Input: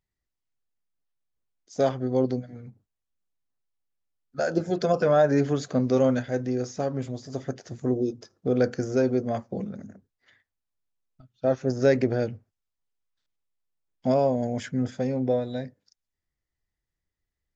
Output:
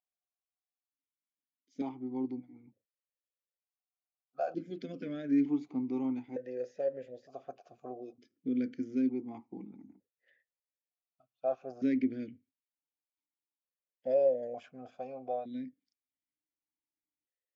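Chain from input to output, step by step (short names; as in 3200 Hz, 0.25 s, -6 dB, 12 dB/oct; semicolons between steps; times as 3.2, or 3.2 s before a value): vowel sequencer 1.1 Hz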